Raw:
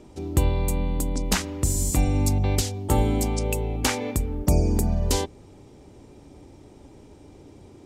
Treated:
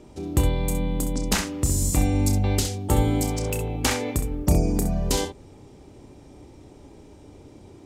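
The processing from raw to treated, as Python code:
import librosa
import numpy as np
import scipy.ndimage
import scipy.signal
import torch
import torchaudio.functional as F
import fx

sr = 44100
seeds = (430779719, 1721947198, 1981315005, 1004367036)

y = fx.room_early_taps(x, sr, ms=(30, 65), db=(-8.5, -9.0))
y = fx.overload_stage(y, sr, gain_db=20.5, at=(3.31, 3.73))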